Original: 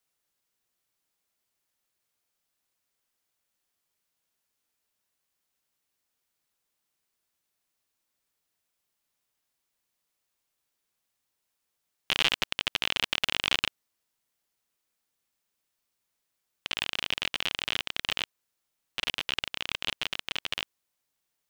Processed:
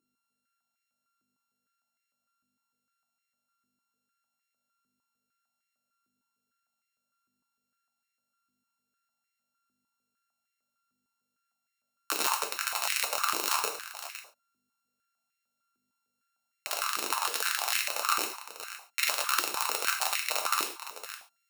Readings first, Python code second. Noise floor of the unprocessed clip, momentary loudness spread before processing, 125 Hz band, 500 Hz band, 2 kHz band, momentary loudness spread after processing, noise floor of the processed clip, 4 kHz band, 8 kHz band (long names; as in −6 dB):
−82 dBFS, 8 LU, below −15 dB, +3.5 dB, −1.0 dB, 13 LU, −85 dBFS, −5.0 dB, +12.0 dB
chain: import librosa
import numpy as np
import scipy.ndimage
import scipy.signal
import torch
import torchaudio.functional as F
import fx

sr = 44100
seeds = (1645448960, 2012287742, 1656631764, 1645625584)

p1 = np.r_[np.sort(x[:len(x) // 32 * 32].reshape(-1, 32), axis=1).ravel(), x[len(x) // 32 * 32:]]
p2 = fx.high_shelf(p1, sr, hz=4000.0, db=11.5)
p3 = fx.rider(p2, sr, range_db=10, speed_s=2.0)
p4 = fx.add_hum(p3, sr, base_hz=50, snr_db=34)
p5 = p4 + fx.echo_single(p4, sr, ms=511, db=-12.0, dry=0)
p6 = fx.rev_gated(p5, sr, seeds[0], gate_ms=160, shape='falling', drr_db=1.0)
p7 = fx.filter_held_highpass(p6, sr, hz=6.6, low_hz=350.0, high_hz=2000.0)
y = p7 * 10.0 ** (-8.0 / 20.0)